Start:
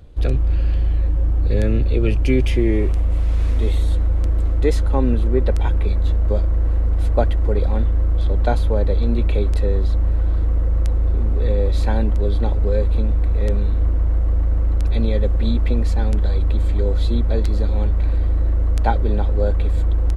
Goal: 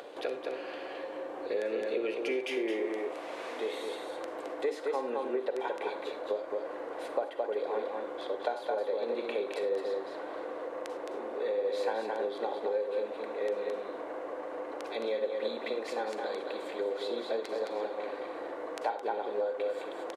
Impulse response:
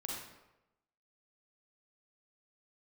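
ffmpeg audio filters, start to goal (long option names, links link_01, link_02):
-filter_complex "[0:a]highpass=frequency=430:width=0.5412,highpass=frequency=430:width=1.3066,aecho=1:1:216:0.531,acompressor=threshold=-28dB:ratio=6,asplit=2[link_01][link_02];[1:a]atrim=start_sample=2205,afade=type=out:start_time=0.16:duration=0.01,atrim=end_sample=7497[link_03];[link_02][link_03]afir=irnorm=-1:irlink=0,volume=-3dB[link_04];[link_01][link_04]amix=inputs=2:normalize=0,acompressor=mode=upward:threshold=-30dB:ratio=2.5,highshelf=frequency=3500:gain=-10.5,bandreject=frequency=1300:width=18,volume=-3.5dB"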